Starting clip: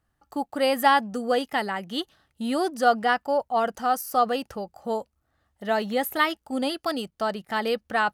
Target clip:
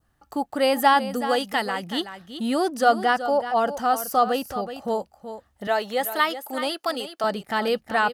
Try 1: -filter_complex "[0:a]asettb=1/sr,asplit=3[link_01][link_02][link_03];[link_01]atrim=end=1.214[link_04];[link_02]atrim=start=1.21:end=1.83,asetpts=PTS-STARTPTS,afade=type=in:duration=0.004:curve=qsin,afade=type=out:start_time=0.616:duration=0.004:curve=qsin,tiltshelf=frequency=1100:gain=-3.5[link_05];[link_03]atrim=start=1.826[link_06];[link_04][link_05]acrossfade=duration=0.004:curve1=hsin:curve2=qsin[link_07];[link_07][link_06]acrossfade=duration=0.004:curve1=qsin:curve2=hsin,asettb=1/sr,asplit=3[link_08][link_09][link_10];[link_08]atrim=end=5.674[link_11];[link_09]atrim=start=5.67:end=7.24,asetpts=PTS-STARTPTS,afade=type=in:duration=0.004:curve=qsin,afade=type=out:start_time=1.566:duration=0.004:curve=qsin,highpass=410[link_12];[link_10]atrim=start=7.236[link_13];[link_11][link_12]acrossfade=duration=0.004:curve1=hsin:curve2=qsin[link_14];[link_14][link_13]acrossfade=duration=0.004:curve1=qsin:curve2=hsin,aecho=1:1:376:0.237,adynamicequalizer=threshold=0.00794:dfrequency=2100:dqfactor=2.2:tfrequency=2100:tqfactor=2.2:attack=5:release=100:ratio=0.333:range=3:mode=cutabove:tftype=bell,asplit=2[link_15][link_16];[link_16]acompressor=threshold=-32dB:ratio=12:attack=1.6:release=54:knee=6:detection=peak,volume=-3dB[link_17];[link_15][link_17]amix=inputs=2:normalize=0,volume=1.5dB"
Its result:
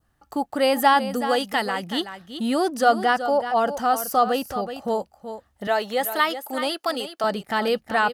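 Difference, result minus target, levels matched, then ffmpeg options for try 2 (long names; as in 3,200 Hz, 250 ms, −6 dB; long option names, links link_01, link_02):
downward compressor: peak gain reduction −8 dB
-filter_complex "[0:a]asettb=1/sr,asplit=3[link_01][link_02][link_03];[link_01]atrim=end=1.214[link_04];[link_02]atrim=start=1.21:end=1.83,asetpts=PTS-STARTPTS,afade=type=in:duration=0.004:curve=qsin,afade=type=out:start_time=0.616:duration=0.004:curve=qsin,tiltshelf=frequency=1100:gain=-3.5[link_05];[link_03]atrim=start=1.826[link_06];[link_04][link_05]acrossfade=duration=0.004:curve1=hsin:curve2=qsin[link_07];[link_07][link_06]acrossfade=duration=0.004:curve1=qsin:curve2=hsin,asettb=1/sr,asplit=3[link_08][link_09][link_10];[link_08]atrim=end=5.674[link_11];[link_09]atrim=start=5.67:end=7.24,asetpts=PTS-STARTPTS,afade=type=in:duration=0.004:curve=qsin,afade=type=out:start_time=1.566:duration=0.004:curve=qsin,highpass=410[link_12];[link_10]atrim=start=7.236[link_13];[link_11][link_12]acrossfade=duration=0.004:curve1=hsin:curve2=qsin[link_14];[link_14][link_13]acrossfade=duration=0.004:curve1=qsin:curve2=hsin,aecho=1:1:376:0.237,adynamicequalizer=threshold=0.00794:dfrequency=2100:dqfactor=2.2:tfrequency=2100:tqfactor=2.2:attack=5:release=100:ratio=0.333:range=3:mode=cutabove:tftype=bell,asplit=2[link_15][link_16];[link_16]acompressor=threshold=-41dB:ratio=12:attack=1.6:release=54:knee=6:detection=peak,volume=-3dB[link_17];[link_15][link_17]amix=inputs=2:normalize=0,volume=1.5dB"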